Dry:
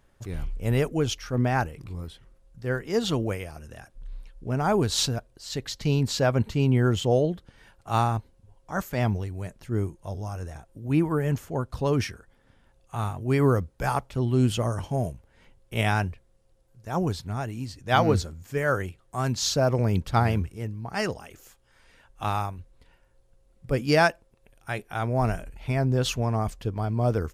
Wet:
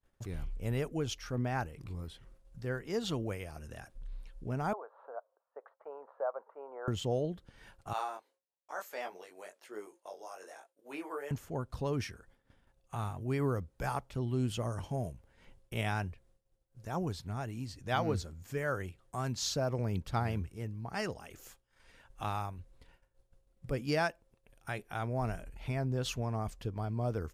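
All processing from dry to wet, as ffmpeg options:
-filter_complex "[0:a]asettb=1/sr,asplit=3[s0][s1][s2];[s0]atrim=end=4.734[s3];[s1]atrim=start=4.73:end=6.88,asetpts=PTS-STARTPTS,afade=t=in:d=0.004:c=qsin,afade=t=out:st=2.146:d=0.004:c=qsin,deesser=0.9,asuperpass=centerf=830:order=8:qfactor=1[s4];[s2]atrim=start=6.876[s5];[s3][s4]acrossfade=d=0.004:c1=hsin:c2=qsin[s6];[s6][s5]acrossfade=d=0.004:c1=qsin:c2=hsin,asettb=1/sr,asplit=3[s7][s8][s9];[s7]atrim=end=7.934[s10];[s8]atrim=start=7.93:end=11.31,asetpts=PTS-STARTPTS,afade=t=in:d=0.004:c=qsin,afade=t=out:st=3.376:d=0.004:c=qsin,highpass=f=430:w=0.5412,highpass=f=430:w=1.3066,flanger=delay=19:depth=3.1:speed=1.1[s11];[s9]atrim=start=11.306[s12];[s10][s11]acrossfade=d=0.004:c1=hsin:c2=qsin[s13];[s13][s12]acrossfade=d=0.004:c1=qsin:c2=hsin,agate=range=0.0224:threshold=0.00251:ratio=3:detection=peak,acompressor=threshold=0.00398:ratio=1.5"

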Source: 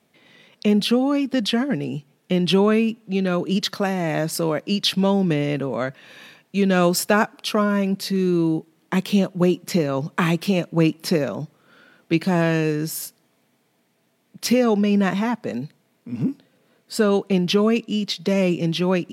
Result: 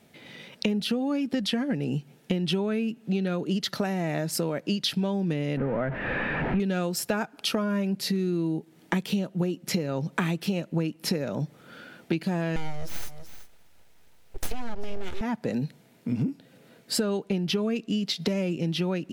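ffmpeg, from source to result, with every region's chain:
-filter_complex "[0:a]asettb=1/sr,asplit=3[s0][s1][s2];[s0]atrim=end=5.574[s3];[s1]atrim=start=5.57:end=6.6,asetpts=PTS-STARTPTS,afade=t=in:d=0.004:c=qsin,afade=t=out:st=1.026:d=0.004:c=qsin,aeval=exprs='val(0)+0.5*0.0596*sgn(val(0))':c=same,lowpass=f=2000:w=0.5412,lowpass=f=2000:w=1.3066[s4];[s2]atrim=start=6.596[s5];[s3][s4]acrossfade=d=0.004:c1=hsin:c2=qsin[s6];[s6][s5]acrossfade=d=0.004:c1=qsin:c2=hsin,asettb=1/sr,asplit=3[s7][s8][s9];[s7]atrim=end=12.564[s10];[s8]atrim=start=12.56:end=15.21,asetpts=PTS-STARTPTS,afade=t=in:d=0.004:c=qsin,afade=t=out:st=2.646:d=0.004:c=qsin,highpass=f=170:w=0.5412,highpass=f=170:w=1.3066,aecho=1:1:375:0.0794,atrim=end_sample=116865,aeval=exprs='abs(val(0))':c=same[s11];[s9]atrim=start=15.206[s12];[s10][s11]acrossfade=d=0.004:c1=hsin:c2=qsin[s13];[s13][s12]acrossfade=d=0.004:c1=qsin:c2=hsin,lowshelf=f=91:g=10.5,bandreject=f=1100:w=7.5,acompressor=threshold=0.0316:ratio=8,volume=1.88"

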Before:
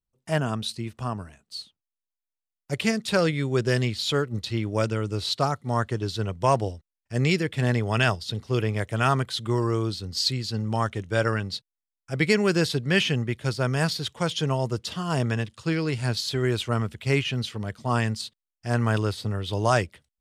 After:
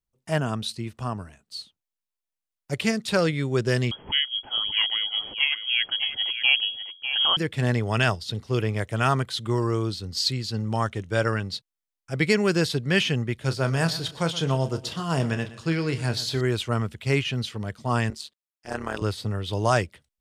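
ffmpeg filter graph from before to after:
-filter_complex "[0:a]asettb=1/sr,asplit=3[s0][s1][s2];[s0]atrim=end=3.914[s3];[s1]atrim=start=3.91:end=7.37,asetpts=PTS-STARTPTS,afade=t=in:d=0.004:c=qsin,afade=t=out:st=3.456:d=0.004:c=qsin,aecho=1:1:599:0.335,atrim=end_sample=152586,lowpass=f=2900:t=q:w=0.5098,lowpass=f=2900:t=q:w=0.6013,lowpass=f=2900:t=q:w=0.9,lowpass=f=2900:t=q:w=2.563,afreqshift=-3400[s4];[s2]atrim=start=7.366[s5];[s3][s4]acrossfade=d=0.004:c1=hsin:c2=qsin[s6];[s6][s5]acrossfade=d=0.004:c1=qsin:c2=hsin,asettb=1/sr,asplit=3[s7][s8][s9];[s7]atrim=end=13.354[s10];[s8]atrim=start=13.35:end=16.41,asetpts=PTS-STARTPTS,afade=t=in:d=0.004:c=qsin,afade=t=out:st=3.056:d=0.004:c=qsin,asplit=2[s11][s12];[s12]adelay=30,volume=0.282[s13];[s11][s13]amix=inputs=2:normalize=0,atrim=end_sample=134946,aecho=1:1:120|240|360|480:0.158|0.0697|0.0307|0.0135,atrim=end_sample=134946[s14];[s9]atrim=start=16.406[s15];[s10][s14]acrossfade=d=0.004:c1=hsin:c2=qsin[s16];[s16][s15]acrossfade=d=0.004:c1=qsin:c2=hsin,asettb=1/sr,asplit=3[s17][s18][s19];[s17]atrim=end=18.104[s20];[s18]atrim=start=18.1:end=19.02,asetpts=PTS-STARTPTS,afade=t=in:d=0.004:c=qsin,afade=t=out:st=0.916:d=0.004:c=qsin,highpass=270,tremolo=f=150:d=0.857[s21];[s19]atrim=start=19.016[s22];[s20][s21]acrossfade=d=0.004:c1=hsin:c2=qsin[s23];[s23][s22]acrossfade=d=0.004:c1=qsin:c2=hsin"

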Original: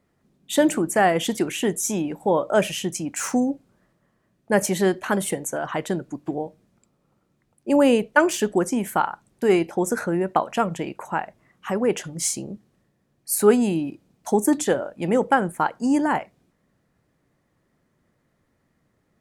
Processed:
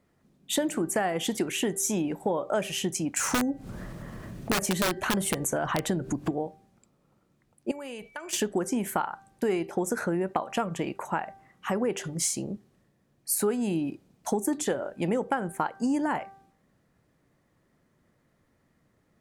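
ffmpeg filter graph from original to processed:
-filter_complex "[0:a]asettb=1/sr,asplit=3[s0][s1][s2];[s0]atrim=end=3.174[s3];[s1]atrim=start=3.17:end=6.32,asetpts=PTS-STARTPTS,afade=t=in:d=0.004:c=qsin,afade=t=out:st=3.146:d=0.004:c=qsin,lowshelf=f=130:g=12,acompressor=mode=upward:threshold=0.1:ratio=2.5:attack=3.2:release=140:knee=2.83:detection=peak,aeval=exprs='(mod(4.22*val(0)+1,2)-1)/4.22':c=same[s4];[s2]atrim=start=6.316[s5];[s3][s4]acrossfade=d=0.004:c1=hsin:c2=qsin[s6];[s6][s5]acrossfade=d=0.004:c1=qsin:c2=hsin,asettb=1/sr,asplit=3[s7][s8][s9];[s7]atrim=end=7.714[s10];[s8]atrim=start=7.71:end=8.33,asetpts=PTS-STARTPTS,afade=t=in:d=0.004:c=qsin,afade=t=out:st=0.616:d=0.004:c=qsin,equalizer=f=280:t=o:w=2.8:g=-10.5,acompressor=threshold=0.0178:ratio=8:attack=3.2:release=140:knee=1:detection=peak,aeval=exprs='val(0)+0.00158*sin(2*PI*2300*n/s)':c=same[s11];[s9]atrim=start=8.326[s12];[s10][s11]acrossfade=d=0.004:c1=hsin:c2=qsin[s13];[s13][s12]acrossfade=d=0.004:c1=qsin:c2=hsin,bandreject=f=390.8:t=h:w=4,bandreject=f=781.6:t=h:w=4,bandreject=f=1172.4:t=h:w=4,bandreject=f=1563.2:t=h:w=4,bandreject=f=1954:t=h:w=4,acompressor=threshold=0.0631:ratio=6"

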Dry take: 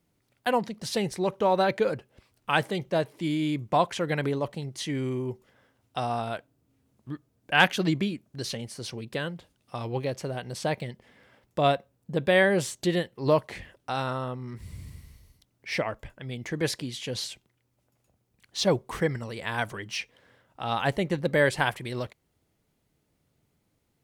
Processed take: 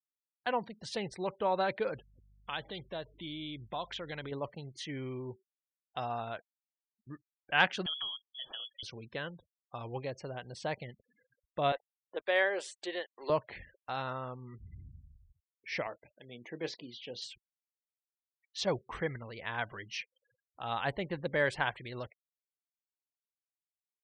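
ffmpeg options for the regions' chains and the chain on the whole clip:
-filter_complex "[0:a]asettb=1/sr,asplit=3[s0][s1][s2];[s0]atrim=end=1.944[s3];[s1]atrim=start=1.94:end=4.32,asetpts=PTS-STARTPTS,afade=t=in:d=0.004:c=qsin,afade=t=out:st=2.376:d=0.004:c=qsin,equalizer=f=3500:t=o:w=0.42:g=11.5,acompressor=threshold=0.0224:ratio=2:attack=3.2:release=140:knee=1:detection=peak,aeval=exprs='val(0)+0.00178*(sin(2*PI*50*n/s)+sin(2*PI*2*50*n/s)/2+sin(2*PI*3*50*n/s)/3+sin(2*PI*4*50*n/s)/4+sin(2*PI*5*50*n/s)/5)':c=same[s4];[s2]atrim=start=4.316[s5];[s3][s4]acrossfade=d=0.004:c1=hsin:c2=qsin[s6];[s6][s5]acrossfade=d=0.004:c1=qsin:c2=hsin,asettb=1/sr,asplit=3[s7][s8][s9];[s7]atrim=end=7.864[s10];[s8]atrim=start=7.86:end=8.83,asetpts=PTS-STARTPTS,afade=t=in:d=0.004:c=qsin,afade=t=out:st=0.966:d=0.004:c=qsin,lowpass=f=3000:t=q:w=0.5098,lowpass=f=3000:t=q:w=0.6013,lowpass=f=3000:t=q:w=0.9,lowpass=f=3000:t=q:w=2.563,afreqshift=-3500,acompressor=threshold=0.0316:ratio=2:attack=3.2:release=140:knee=1:detection=peak[s11];[s9]atrim=start=8.826[s12];[s10][s11]acrossfade=d=0.004:c1=hsin:c2=qsin[s13];[s13][s12]acrossfade=d=0.004:c1=qsin:c2=hsin,asettb=1/sr,asplit=3[s14][s15][s16];[s14]atrim=end=11.724[s17];[s15]atrim=start=11.72:end=13.3,asetpts=PTS-STARTPTS,afade=t=in:d=0.004:c=qsin,afade=t=out:st=1.576:d=0.004:c=qsin,highpass=f=370:w=0.5412,highpass=f=370:w=1.3066,acrusher=bits=6:mix=0:aa=0.5,aeval=exprs='sgn(val(0))*max(abs(val(0))-0.002,0)':c=same[s18];[s16]atrim=start=13.296[s19];[s17][s18]acrossfade=d=0.004:c1=hsin:c2=qsin[s20];[s20][s19]acrossfade=d=0.004:c1=qsin:c2=hsin,asettb=1/sr,asplit=3[s21][s22][s23];[s21]atrim=end=15.874[s24];[s22]atrim=start=15.87:end=17.22,asetpts=PTS-STARTPTS,afade=t=in:d=0.004:c=qsin,afade=t=out:st=1.346:d=0.004:c=qsin,highpass=230,lowpass=5300,equalizer=f=1600:t=o:w=1.2:g=-7,asplit=2[s25][s26];[s26]adelay=25,volume=0.266[s27];[s25][s27]amix=inputs=2:normalize=0,atrim=end_sample=59535[s28];[s23]atrim=start=17.216[s29];[s24][s28]acrossfade=d=0.004:c1=hsin:c2=qsin[s30];[s30][s29]acrossfade=d=0.004:c1=qsin:c2=hsin,lowpass=f=3800:p=1,afftfilt=real='re*gte(hypot(re,im),0.00562)':imag='im*gte(hypot(re,im),0.00562)':win_size=1024:overlap=0.75,equalizer=f=210:t=o:w=2.8:g=-6.5,volume=0.596"

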